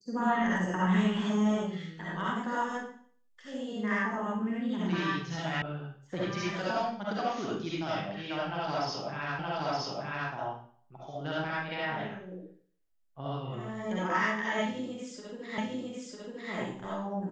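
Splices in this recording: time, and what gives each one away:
0:05.62: cut off before it has died away
0:09.39: the same again, the last 0.92 s
0:15.58: the same again, the last 0.95 s

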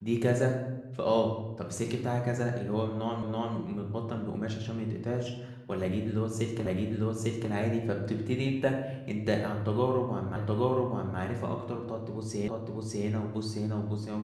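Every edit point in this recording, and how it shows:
0:03.23: the same again, the last 0.33 s
0:06.66: the same again, the last 0.85 s
0:10.36: the same again, the last 0.82 s
0:12.48: the same again, the last 0.6 s

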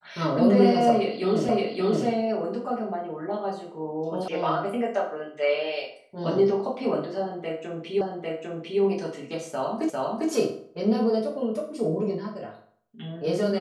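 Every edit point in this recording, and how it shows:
0:01.49: the same again, the last 0.57 s
0:04.28: cut off before it has died away
0:08.01: the same again, the last 0.8 s
0:09.90: the same again, the last 0.4 s

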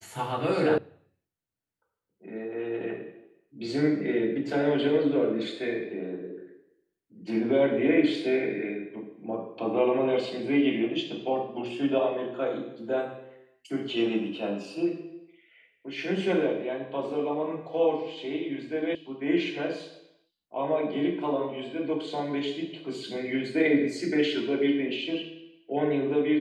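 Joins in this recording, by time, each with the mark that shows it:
0:00.78: cut off before it has died away
0:18.95: cut off before it has died away

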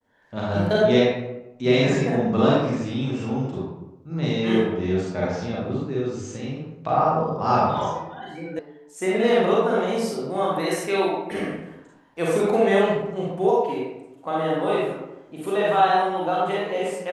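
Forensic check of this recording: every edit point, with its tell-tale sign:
0:08.59: cut off before it has died away

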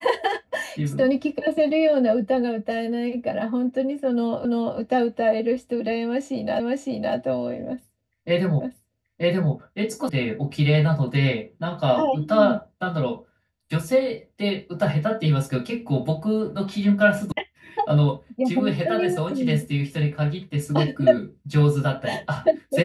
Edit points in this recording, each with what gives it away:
0:04.45: the same again, the last 0.34 s
0:06.60: the same again, the last 0.56 s
0:08.60: the same again, the last 0.93 s
0:10.09: cut off before it has died away
0:17.32: cut off before it has died away

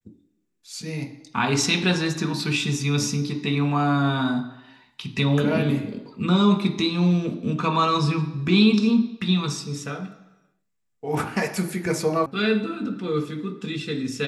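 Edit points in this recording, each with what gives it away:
0:12.26: cut off before it has died away

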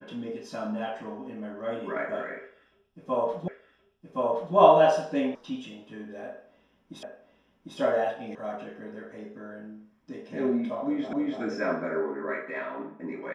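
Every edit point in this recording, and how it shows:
0:03.48: the same again, the last 1.07 s
0:05.35: cut off before it has died away
0:07.03: the same again, the last 0.75 s
0:08.35: cut off before it has died away
0:11.13: the same again, the last 0.29 s

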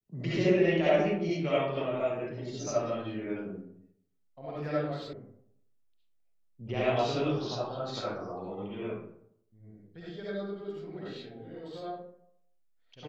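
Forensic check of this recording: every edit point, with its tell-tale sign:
0:05.13: cut off before it has died away

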